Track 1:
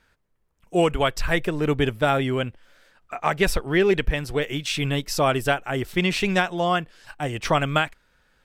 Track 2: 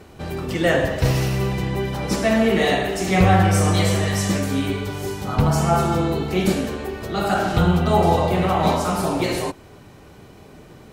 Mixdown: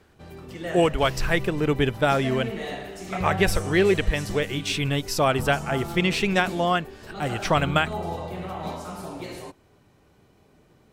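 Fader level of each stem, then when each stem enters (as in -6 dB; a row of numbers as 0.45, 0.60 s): -0.5, -14.0 dB; 0.00, 0.00 s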